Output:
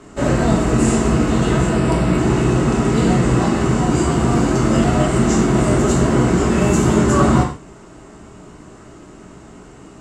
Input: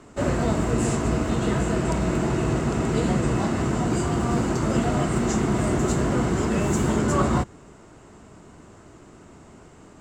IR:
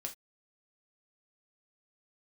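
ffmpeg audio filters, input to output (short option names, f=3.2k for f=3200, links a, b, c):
-filter_complex "[0:a]asettb=1/sr,asplit=3[a][b][c];[a]atrim=end=1.674[d];[b]atrim=start=1.67:end=2.18,asetpts=PTS-STARTPTS,afade=t=in:d=0.004:c=qsin,afade=t=out:st=0.506:d=0.004:c=qsin,equalizer=f=6.5k:w=5.7:g=-13[e];[c]atrim=start=2.176[f];[d][e]acrossfade=d=0.004:c1=hsin:c2=qsin[g];[g][f]acrossfade=d=0.004:c1=qsin:c2=hsin[h];[1:a]atrim=start_sample=2205,asetrate=24696,aresample=44100[i];[h][i]afir=irnorm=-1:irlink=0,volume=5dB"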